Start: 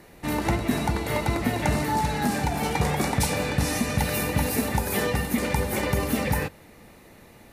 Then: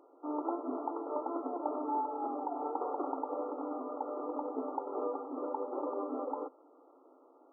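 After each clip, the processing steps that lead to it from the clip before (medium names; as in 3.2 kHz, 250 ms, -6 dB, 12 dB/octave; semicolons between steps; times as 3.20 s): FFT band-pass 250–1400 Hz; trim -7.5 dB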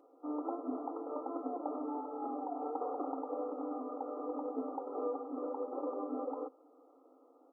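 peaking EQ 980 Hz -7.5 dB 0.24 oct; comb 4 ms, depth 50%; trim -2.5 dB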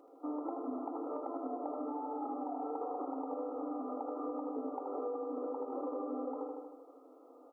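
feedback delay 78 ms, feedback 56%, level -5.5 dB; compression 5:1, threshold -40 dBFS, peak gain reduction 9 dB; trim +4 dB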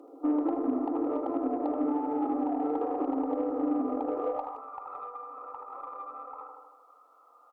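high-pass sweep 290 Hz -> 1.3 kHz, 4.04–4.66 s; Chebyshev shaper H 7 -36 dB, 8 -40 dB, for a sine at -22.5 dBFS; speakerphone echo 170 ms, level -22 dB; trim +5 dB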